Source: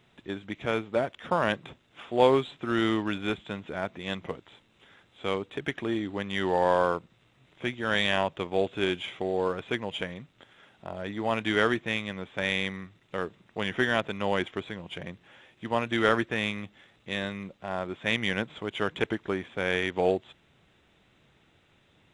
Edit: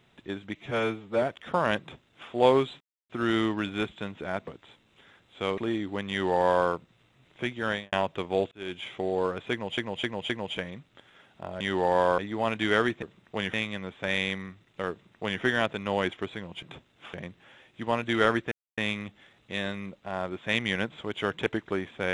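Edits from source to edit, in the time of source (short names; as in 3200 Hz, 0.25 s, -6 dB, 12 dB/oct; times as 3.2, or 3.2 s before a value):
0.55–1 stretch 1.5×
1.57–2.08 copy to 14.97
2.58 insert silence 0.29 s
3.96–4.31 cut
5.41–5.79 cut
6.31–6.89 copy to 11.04
7.86–8.14 studio fade out
8.73–9.14 fade in linear
9.73–9.99 loop, 4 plays
13.25–13.76 copy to 11.88
16.35 insert silence 0.26 s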